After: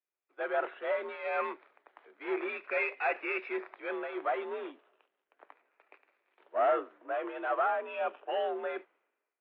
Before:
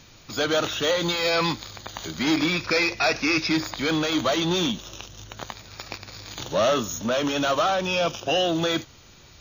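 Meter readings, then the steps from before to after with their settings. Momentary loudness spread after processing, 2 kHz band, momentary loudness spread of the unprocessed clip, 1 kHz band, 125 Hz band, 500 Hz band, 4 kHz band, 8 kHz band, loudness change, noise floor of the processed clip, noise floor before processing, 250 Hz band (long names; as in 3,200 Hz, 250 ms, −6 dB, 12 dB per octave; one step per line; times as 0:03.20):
9 LU, −10.0 dB, 16 LU, −6.0 dB, below −40 dB, −8.0 dB, −27.5 dB, below −40 dB, −10.5 dB, below −85 dBFS, −50 dBFS, −18.5 dB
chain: single-sideband voice off tune +58 Hz 300–2,300 Hz
multiband upward and downward expander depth 100%
level −9 dB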